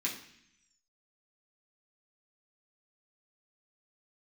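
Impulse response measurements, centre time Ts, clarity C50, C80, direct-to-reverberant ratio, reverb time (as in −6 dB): 26 ms, 8.0 dB, 11.0 dB, −5.0 dB, 0.65 s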